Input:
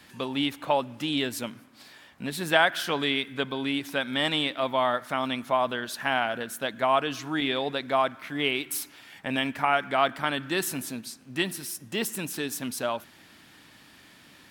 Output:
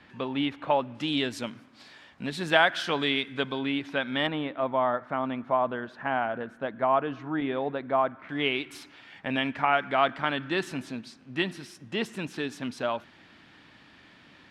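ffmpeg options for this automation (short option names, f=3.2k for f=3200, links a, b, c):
-af "asetnsamples=n=441:p=0,asendcmd='0.95 lowpass f 5700;3.59 lowpass f 3200;4.27 lowpass f 1400;8.29 lowpass f 3600',lowpass=2.7k"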